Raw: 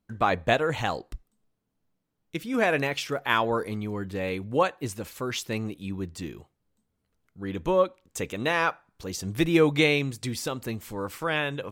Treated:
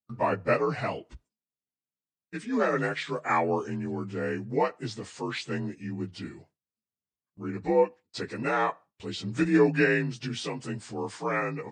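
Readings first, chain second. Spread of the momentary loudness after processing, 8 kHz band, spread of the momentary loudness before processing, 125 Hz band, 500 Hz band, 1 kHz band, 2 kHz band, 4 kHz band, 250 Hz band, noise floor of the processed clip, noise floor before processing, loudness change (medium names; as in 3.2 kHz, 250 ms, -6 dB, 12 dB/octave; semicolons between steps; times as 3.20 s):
13 LU, -8.0 dB, 13 LU, -2.0 dB, -1.0 dB, -1.5 dB, -3.0 dB, -7.0 dB, -0.5 dB, under -85 dBFS, -78 dBFS, -1.5 dB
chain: frequency axis rescaled in octaves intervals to 86%; high-pass 83 Hz; gate with hold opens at -46 dBFS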